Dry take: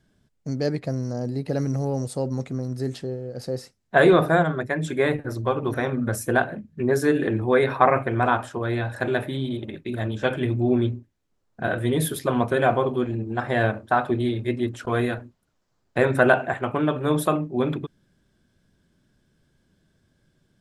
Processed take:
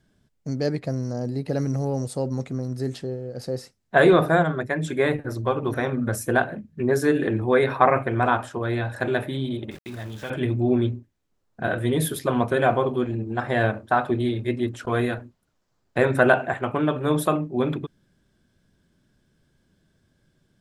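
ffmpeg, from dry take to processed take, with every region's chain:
-filter_complex "[0:a]asettb=1/sr,asplit=3[s0][s1][s2];[s0]atrim=end=9.714[s3];[s1]atrim=start=9.71:end=10.3,asetpts=PTS-STARTPTS,afade=t=in:d=0.004:c=qsin,afade=t=out:st=0.586:d=0.004:c=qsin,equalizer=f=390:t=o:w=2.1:g=-5,acompressor=threshold=0.0251:ratio=2.5:attack=3.2:release=140:knee=1:detection=peak,aeval=exprs='val(0)*gte(abs(val(0)),0.00841)':c=same[s4];[s2]atrim=start=10.296[s5];[s3][s4]acrossfade=d=0.004:c1=hsin:c2=qsin[s6];[s6][s5]acrossfade=d=0.004:c1=qsin:c2=hsin"

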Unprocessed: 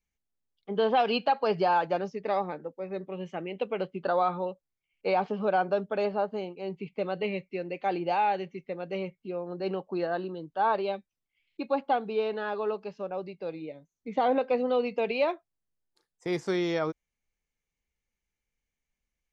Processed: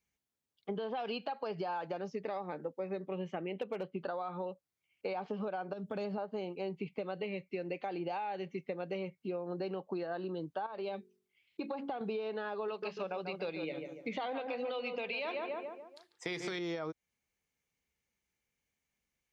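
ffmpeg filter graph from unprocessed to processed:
-filter_complex "[0:a]asettb=1/sr,asplit=3[s0][s1][s2];[s0]atrim=end=3.154[s3];[s1]atrim=start=3.15:end=3.99,asetpts=PTS-STARTPTS,afade=t=in:d=0.004:c=qsin,afade=t=out:st=0.836:d=0.004:c=qsin,aemphasis=mode=reproduction:type=cd,asoftclip=type=hard:threshold=0.0708[s4];[s2]atrim=start=3.986[s5];[s3][s4]acrossfade=d=0.004:c1=hsin:c2=qsin[s6];[s6][s5]acrossfade=d=0.004:c1=qsin:c2=hsin,asettb=1/sr,asplit=3[s7][s8][s9];[s7]atrim=end=5.734[s10];[s8]atrim=start=5.73:end=6.18,asetpts=PTS-STARTPTS,afade=t=in:d=0.004:c=qsin,afade=t=out:st=0.446:d=0.004:c=qsin,bass=f=250:g=11,treble=f=4000:g=8,acompressor=threshold=0.0178:ratio=3:attack=3.2:release=140:knee=1:detection=peak[s11];[s9]atrim=start=6.176[s12];[s10][s11]acrossfade=d=0.004:c1=hsin:c2=qsin[s13];[s13][s12]acrossfade=d=0.004:c1=qsin:c2=hsin,asettb=1/sr,asplit=3[s14][s15][s16];[s14]atrim=end=10.664[s17];[s15]atrim=start=10.66:end=12.01,asetpts=PTS-STARTPTS,afade=t=in:d=0.004:c=qsin,afade=t=out:st=1.346:d=0.004:c=qsin,bandreject=f=46.41:t=h:w=4,bandreject=f=92.82:t=h:w=4,bandreject=f=139.23:t=h:w=4,bandreject=f=185.64:t=h:w=4,bandreject=f=232.05:t=h:w=4,bandreject=f=278.46:t=h:w=4,bandreject=f=324.87:t=h:w=4,bandreject=f=371.28:t=h:w=4,bandreject=f=417.69:t=h:w=4,bandreject=f=464.1:t=h:w=4,acompressor=threshold=0.0224:ratio=12:attack=3.2:release=140:knee=1:detection=peak[s18];[s16]atrim=start=12.006[s19];[s17][s18]acrossfade=d=0.004:c1=hsin:c2=qsin[s20];[s20][s19]acrossfade=d=0.004:c1=qsin:c2=hsin,asettb=1/sr,asplit=3[s21][s22][s23];[s21]atrim=end=12.684[s24];[s22]atrim=start=12.68:end=16.59,asetpts=PTS-STARTPTS,afade=t=in:d=0.004:c=qsin,afade=t=out:st=3.906:d=0.004:c=qsin,equalizer=f=3000:w=0.54:g=12,bandreject=f=50:t=h:w=6,bandreject=f=100:t=h:w=6,bandreject=f=150:t=h:w=6,bandreject=f=200:t=h:w=6,bandreject=f=250:t=h:w=6,bandreject=f=300:t=h:w=6,bandreject=f=350:t=h:w=6,asplit=2[s25][s26];[s26]adelay=144,lowpass=f=1800:p=1,volume=0.398,asplit=2[s27][s28];[s28]adelay=144,lowpass=f=1800:p=1,volume=0.46,asplit=2[s29][s30];[s30]adelay=144,lowpass=f=1800:p=1,volume=0.46,asplit=2[s31][s32];[s32]adelay=144,lowpass=f=1800:p=1,volume=0.46,asplit=2[s33][s34];[s34]adelay=144,lowpass=f=1800:p=1,volume=0.46[s35];[s25][s27][s29][s31][s33][s35]amix=inputs=6:normalize=0,atrim=end_sample=172431[s36];[s23]atrim=start=16.586[s37];[s24][s36]acrossfade=d=0.004:c1=hsin:c2=qsin[s38];[s38][s37]acrossfade=d=0.004:c1=qsin:c2=hsin,highpass=82,alimiter=level_in=1.26:limit=0.0631:level=0:latency=1:release=294,volume=0.794,acompressor=threshold=0.0141:ratio=6,volume=1.33"

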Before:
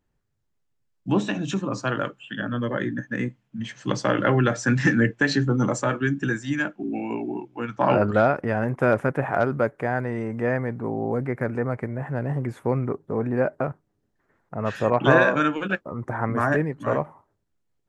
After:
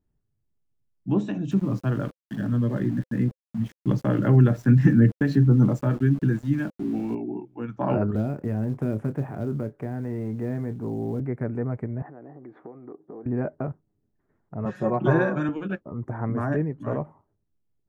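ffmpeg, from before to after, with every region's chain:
-filter_complex "[0:a]asettb=1/sr,asplit=3[s0][s1][s2];[s0]atrim=end=1.514[s3];[s1]atrim=start=1.51:end=7.15,asetpts=PTS-STARTPTS,afade=t=in:d=0.004:c=qsin,afade=t=out:st=5.636:d=0.004:c=qsin,bass=f=250:g=7,treble=f=4000:g=-4,aeval=exprs='val(0)*gte(abs(val(0)),0.02)':c=same[s4];[s2]atrim=start=7.146[s5];[s3][s4]acrossfade=d=0.004:c1=hsin:c2=qsin[s6];[s6][s5]acrossfade=d=0.004:c1=qsin:c2=hsin,asettb=1/sr,asplit=3[s7][s8][s9];[s7]atrim=end=8.154[s10];[s8]atrim=start=8.15:end=11.2,asetpts=PTS-STARTPTS,afade=t=in:d=0.004:c=qsin,afade=t=out:st=3.046:d=0.004:c=qsin,acrossover=split=400|3000[s11][s12][s13];[s12]acompressor=threshold=0.0282:ratio=10:attack=3.2:release=140:knee=2.83:detection=peak[s14];[s11][s14][s13]amix=inputs=3:normalize=0,acrusher=bits=6:mode=log:mix=0:aa=0.000001,asplit=2[s15][s16];[s16]adelay=28,volume=0.266[s17];[s15][s17]amix=inputs=2:normalize=0,atrim=end_sample=134505[s18];[s9]atrim=start=11.196[s19];[s10][s18]acrossfade=d=0.004:c1=hsin:c2=qsin[s20];[s20][s19]acrossfade=d=0.004:c1=qsin:c2=hsin,asettb=1/sr,asplit=3[s21][s22][s23];[s21]atrim=end=12.024[s24];[s22]atrim=start=12.02:end=13.26,asetpts=PTS-STARTPTS,afade=t=in:d=0.004:c=qsin,afade=t=out:st=1.236:d=0.004:c=qsin,acompressor=threshold=0.0178:ratio=12:attack=3.2:release=140:knee=1:detection=peak,highpass=260,equalizer=f=320:t=q:w=4:g=10,equalizer=f=490:t=q:w=4:g=4,equalizer=f=740:t=q:w=4:g=9,equalizer=f=1200:t=q:w=4:g=6,equalizer=f=1800:t=q:w=4:g=4,equalizer=f=2700:t=q:w=4:g=-6,lowpass=f=3100:w=0.5412,lowpass=f=3100:w=1.3066[s25];[s23]atrim=start=13.256[s26];[s24][s25]acrossfade=d=0.004:c1=hsin:c2=qsin[s27];[s27][s26]acrossfade=d=0.004:c1=qsin:c2=hsin,asettb=1/sr,asplit=3[s28][s29][s30];[s28]atrim=end=14.654[s31];[s29]atrim=start=14.65:end=15.49,asetpts=PTS-STARTPTS,afade=t=in:d=0.004:c=qsin,afade=t=out:st=0.836:d=0.004:c=qsin,highpass=94,equalizer=f=2900:w=2.1:g=-6,aecho=1:1:5.5:0.81,atrim=end_sample=37044[s32];[s30]atrim=start=15.486[s33];[s31][s32]acrossfade=d=0.004:c1=hsin:c2=qsin[s34];[s34][s33]acrossfade=d=0.004:c1=qsin:c2=hsin,tiltshelf=f=720:g=7.5,bandreject=f=520:w=12,volume=0.473"

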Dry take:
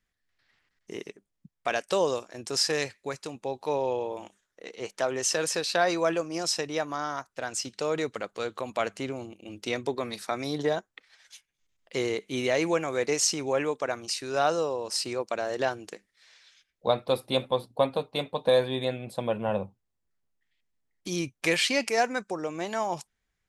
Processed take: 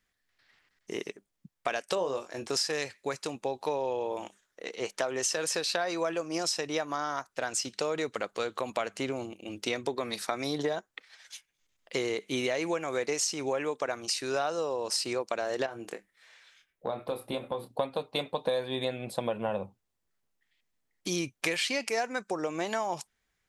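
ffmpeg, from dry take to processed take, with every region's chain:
-filter_complex "[0:a]asettb=1/sr,asplit=3[s0][s1][s2];[s0]atrim=end=1.954[s3];[s1]atrim=start=1.95:end=2.5,asetpts=PTS-STARTPTS,afade=t=in:d=0.004:c=qsin,afade=t=out:st=0.546:d=0.004:c=qsin,acrossover=split=2800[s4][s5];[s5]acompressor=threshold=0.00355:ratio=4:attack=1:release=60[s6];[s4][s6]amix=inputs=2:normalize=0,asplit=2[s7][s8];[s8]adelay=22,volume=0.422[s9];[s7][s9]amix=inputs=2:normalize=0,atrim=end_sample=24255[s10];[s2]atrim=start=2.496[s11];[s3][s10]acrossfade=d=0.004:c1=hsin:c2=qsin[s12];[s12][s11]acrossfade=d=0.004:c1=qsin:c2=hsin,asettb=1/sr,asplit=3[s13][s14][s15];[s13]atrim=end=15.664[s16];[s14]atrim=start=15.66:end=17.69,asetpts=PTS-STARTPTS,afade=t=in:d=0.004:c=qsin,afade=t=out:st=2.026:d=0.004:c=qsin,equalizer=f=5000:t=o:w=1.3:g=-10.5,acompressor=threshold=0.0251:ratio=4:attack=3.2:release=140:knee=1:detection=peak,asplit=2[s17][s18];[s18]adelay=26,volume=0.376[s19];[s17][s19]amix=inputs=2:normalize=0,atrim=end_sample=89523[s20];[s15]atrim=start=17.686[s21];[s16][s20]acrossfade=d=0.004:c1=hsin:c2=qsin[s22];[s22][s21]acrossfade=d=0.004:c1=qsin:c2=hsin,lowshelf=f=200:g=-6.5,acompressor=threshold=0.0282:ratio=6,volume=1.58"

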